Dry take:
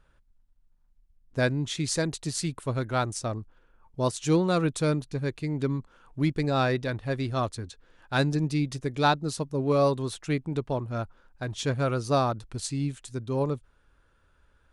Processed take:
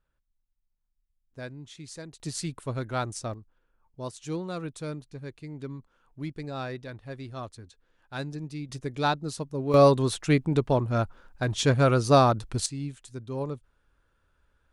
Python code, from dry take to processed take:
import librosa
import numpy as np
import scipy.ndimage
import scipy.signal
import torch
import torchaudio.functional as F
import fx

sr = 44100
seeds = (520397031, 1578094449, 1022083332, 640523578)

y = fx.gain(x, sr, db=fx.steps((0.0, -14.5), (2.2, -3.0), (3.34, -10.0), (8.69, -3.0), (9.74, 5.5), (12.66, -5.0)))